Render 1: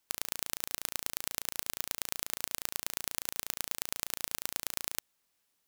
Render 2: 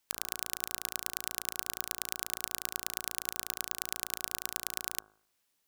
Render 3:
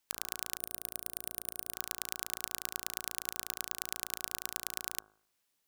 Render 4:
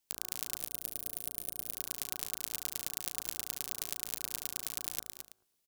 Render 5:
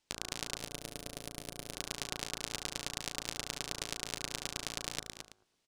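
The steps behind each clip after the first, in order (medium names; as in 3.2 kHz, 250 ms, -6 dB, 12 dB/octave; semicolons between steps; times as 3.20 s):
de-hum 52.61 Hz, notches 31
time-frequency box 0.57–1.74 s, 730–9000 Hz -8 dB; trim -2 dB
chunks repeated in reverse 116 ms, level -8.5 dB; peaking EQ 1.4 kHz -7 dB 2 oct; on a send: delay 219 ms -7.5 dB
distance through air 89 m; trim +7.5 dB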